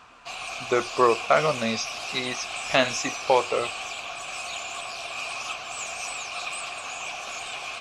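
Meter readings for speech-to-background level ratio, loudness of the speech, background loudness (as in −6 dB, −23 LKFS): 7.0 dB, −25.0 LKFS, −32.0 LKFS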